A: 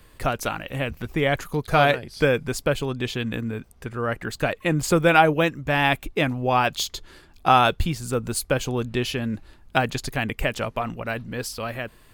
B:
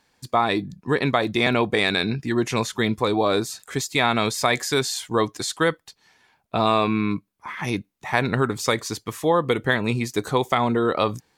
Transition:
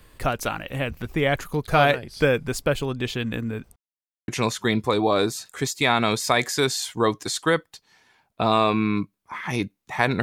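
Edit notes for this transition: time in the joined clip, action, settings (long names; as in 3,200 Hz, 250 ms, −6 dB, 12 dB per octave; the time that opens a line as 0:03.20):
A
0:03.76–0:04.28: silence
0:04.28: continue with B from 0:02.42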